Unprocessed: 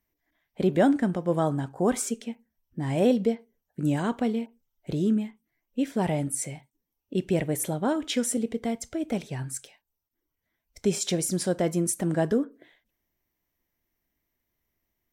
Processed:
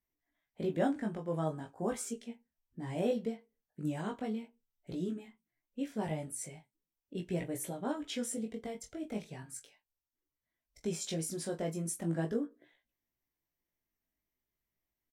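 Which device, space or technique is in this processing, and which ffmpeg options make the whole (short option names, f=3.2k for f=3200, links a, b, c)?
double-tracked vocal: -filter_complex "[0:a]asplit=2[a][b];[b]adelay=24,volume=-10dB[c];[a][c]amix=inputs=2:normalize=0,flanger=delay=16.5:depth=2.9:speed=0.39,volume=-7.5dB"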